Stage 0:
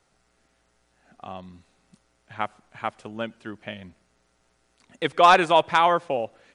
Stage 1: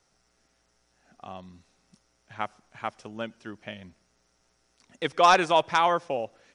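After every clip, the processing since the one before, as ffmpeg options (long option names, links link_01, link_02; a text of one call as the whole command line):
ffmpeg -i in.wav -af "equalizer=frequency=5600:width_type=o:width=0.35:gain=10.5,volume=-3.5dB" out.wav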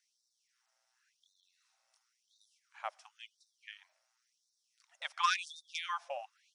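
ffmpeg -i in.wav -af "afftfilt=real='re*gte(b*sr/1024,520*pow(3600/520,0.5+0.5*sin(2*PI*0.94*pts/sr)))':imag='im*gte(b*sr/1024,520*pow(3600/520,0.5+0.5*sin(2*PI*0.94*pts/sr)))':win_size=1024:overlap=0.75,volume=-7.5dB" out.wav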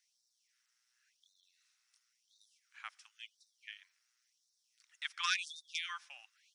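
ffmpeg -i in.wav -af "highpass=frequency=1500:width=0.5412,highpass=frequency=1500:width=1.3066,volume=1dB" out.wav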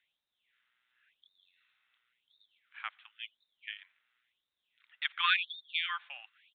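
ffmpeg -i in.wav -af "aresample=8000,aresample=44100,volume=7dB" out.wav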